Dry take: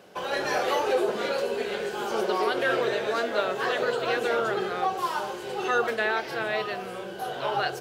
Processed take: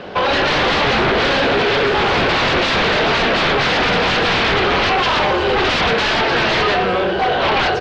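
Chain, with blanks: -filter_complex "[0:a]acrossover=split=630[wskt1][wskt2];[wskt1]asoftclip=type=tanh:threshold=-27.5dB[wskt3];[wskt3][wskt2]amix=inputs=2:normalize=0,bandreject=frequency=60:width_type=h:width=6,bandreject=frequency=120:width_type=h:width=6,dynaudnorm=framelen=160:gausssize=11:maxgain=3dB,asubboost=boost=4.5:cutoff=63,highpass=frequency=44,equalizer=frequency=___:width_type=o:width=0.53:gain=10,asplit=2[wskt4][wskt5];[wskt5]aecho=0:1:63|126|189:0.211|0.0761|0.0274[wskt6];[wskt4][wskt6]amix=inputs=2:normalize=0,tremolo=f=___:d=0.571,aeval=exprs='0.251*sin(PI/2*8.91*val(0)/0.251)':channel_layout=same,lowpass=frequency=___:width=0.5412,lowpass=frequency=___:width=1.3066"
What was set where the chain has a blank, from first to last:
84, 290, 4.2k, 4.2k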